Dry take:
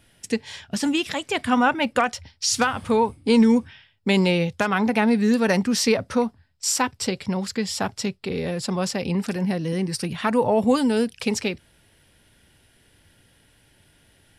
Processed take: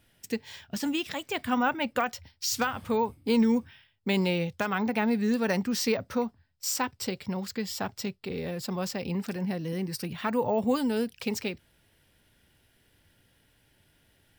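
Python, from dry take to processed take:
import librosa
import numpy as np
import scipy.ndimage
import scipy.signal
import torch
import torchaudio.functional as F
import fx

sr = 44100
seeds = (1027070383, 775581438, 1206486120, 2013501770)

y = np.repeat(scipy.signal.resample_poly(x, 1, 2), 2)[:len(x)]
y = F.gain(torch.from_numpy(y), -7.0).numpy()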